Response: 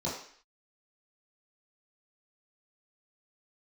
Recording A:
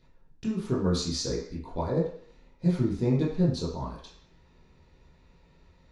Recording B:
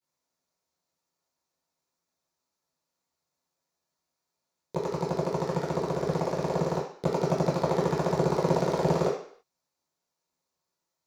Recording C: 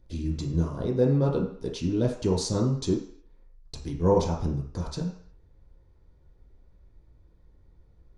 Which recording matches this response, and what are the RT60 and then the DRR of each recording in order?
A; 0.55, 0.55, 0.55 seconds; −8.5, −17.0, −2.0 decibels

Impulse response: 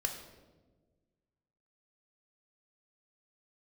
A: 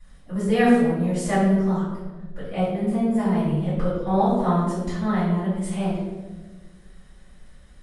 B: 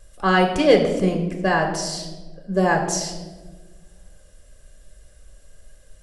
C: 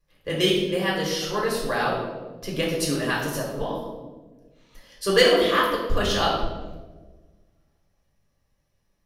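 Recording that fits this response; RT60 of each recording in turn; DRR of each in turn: B; 1.3, 1.4, 1.3 seconds; −14.0, 3.0, −4.0 decibels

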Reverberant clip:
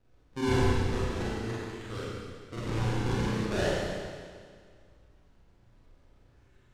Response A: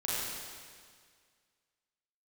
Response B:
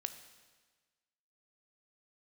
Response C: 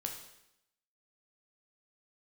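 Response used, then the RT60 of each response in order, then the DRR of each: A; 1.9, 1.4, 0.80 seconds; −8.5, 9.0, 2.0 decibels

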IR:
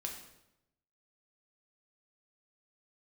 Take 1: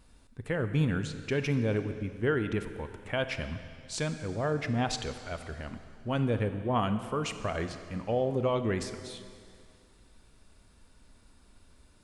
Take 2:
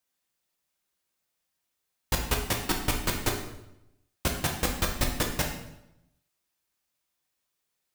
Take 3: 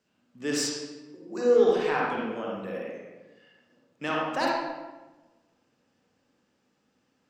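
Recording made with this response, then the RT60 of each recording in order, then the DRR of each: 2; 2.3, 0.85, 1.2 seconds; 9.0, 0.5, −4.0 decibels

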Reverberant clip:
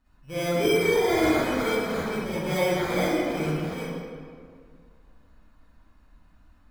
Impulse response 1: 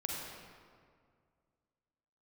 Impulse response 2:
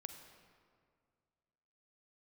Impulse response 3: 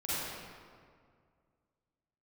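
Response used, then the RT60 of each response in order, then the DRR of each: 3; 2.1, 2.1, 2.1 seconds; −2.5, 6.5, −12.0 decibels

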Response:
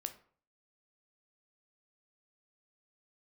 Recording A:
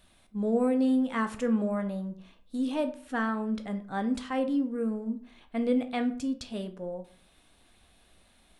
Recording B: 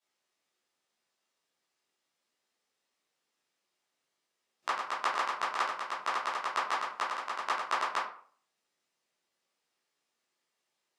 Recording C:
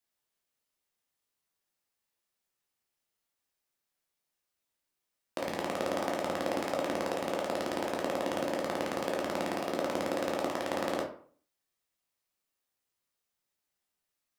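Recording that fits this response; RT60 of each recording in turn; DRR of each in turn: A; 0.50, 0.50, 0.50 seconds; 7.5, −9.5, −1.0 decibels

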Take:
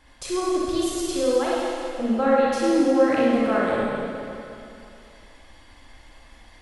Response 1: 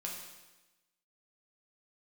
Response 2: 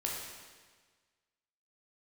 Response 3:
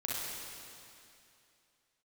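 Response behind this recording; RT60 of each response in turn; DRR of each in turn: 3; 1.1, 1.5, 2.7 seconds; −2.5, −3.0, −6.0 decibels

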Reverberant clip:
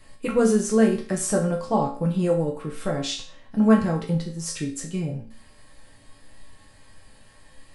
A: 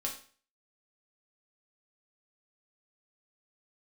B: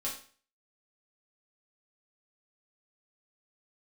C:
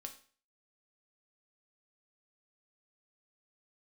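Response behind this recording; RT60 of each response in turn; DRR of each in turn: A; 0.45, 0.45, 0.45 seconds; −1.5, −6.0, 4.0 decibels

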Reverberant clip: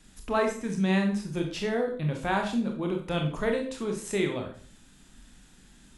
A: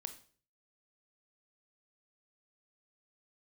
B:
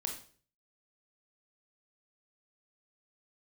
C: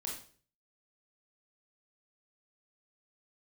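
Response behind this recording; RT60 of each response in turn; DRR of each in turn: B; 0.45, 0.45, 0.45 seconds; 8.5, 2.0, −2.0 decibels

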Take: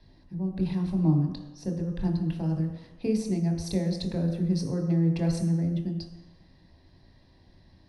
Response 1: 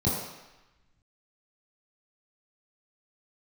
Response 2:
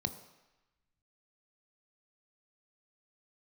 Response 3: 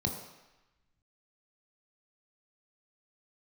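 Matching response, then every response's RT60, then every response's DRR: 3; 1.0, 1.0, 1.0 seconds; −8.0, 9.0, 2.0 decibels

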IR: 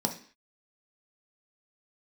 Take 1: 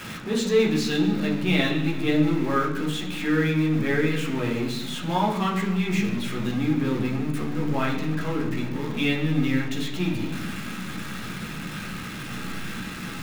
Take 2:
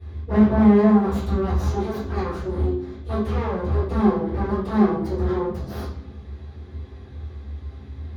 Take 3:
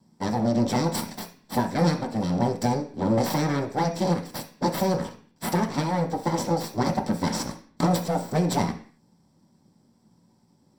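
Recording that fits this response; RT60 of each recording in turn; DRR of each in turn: 3; non-exponential decay, 0.75 s, 0.45 s; −3.5, −17.5, 2.5 decibels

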